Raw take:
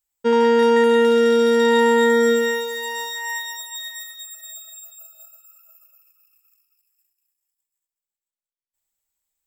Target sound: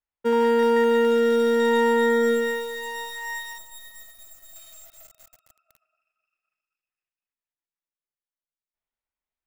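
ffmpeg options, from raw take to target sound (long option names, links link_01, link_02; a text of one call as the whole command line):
ffmpeg -i in.wav -filter_complex "[0:a]acrossover=split=280|3200[link_01][link_02][link_03];[link_03]acrusher=bits=4:dc=4:mix=0:aa=0.000001[link_04];[link_01][link_02][link_04]amix=inputs=3:normalize=0,asettb=1/sr,asplit=3[link_05][link_06][link_07];[link_05]atrim=end=3.584[link_08];[link_06]atrim=start=3.58:end=4.56,asetpts=PTS-STARTPTS,afade=type=in:duration=0.004:curve=qsin,afade=type=out:start_time=0.976:duration=0.004:curve=qsin,equalizer=frequency=2800:width=0.43:gain=-8.5[link_09];[link_07]atrim=start=4.556[link_10];[link_08][link_09]acrossfade=duration=0.004:curve1=hsin:curve2=qsin[link_11];[link_11][link_10]acrossfade=duration=0.004:curve1=qsin:curve2=hsin,volume=-4dB" out.wav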